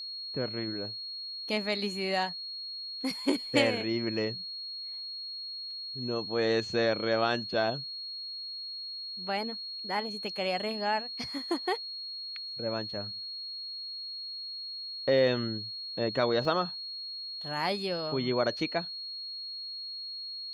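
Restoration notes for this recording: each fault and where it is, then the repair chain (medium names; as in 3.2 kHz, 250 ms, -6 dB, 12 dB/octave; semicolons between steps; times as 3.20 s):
whine 4.3 kHz -37 dBFS
16.45 s: dropout 2.1 ms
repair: band-stop 4.3 kHz, Q 30; interpolate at 16.45 s, 2.1 ms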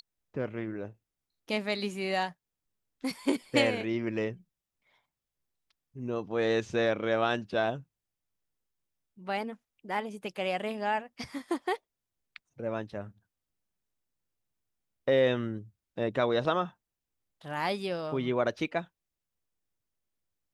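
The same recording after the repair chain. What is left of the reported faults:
nothing left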